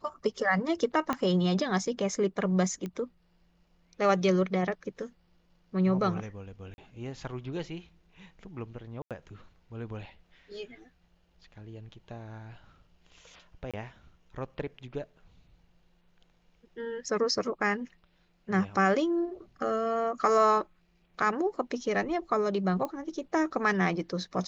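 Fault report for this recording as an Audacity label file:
1.130000	1.130000	pop -16 dBFS
2.860000	2.860000	pop -24 dBFS
6.740000	6.780000	gap 41 ms
9.020000	9.110000	gap 87 ms
13.710000	13.740000	gap 26 ms
22.850000	22.850000	pop -21 dBFS

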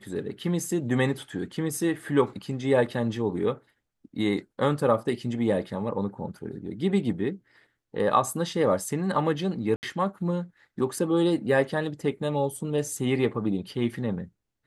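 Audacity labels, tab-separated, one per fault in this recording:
9.760000	9.830000	gap 69 ms

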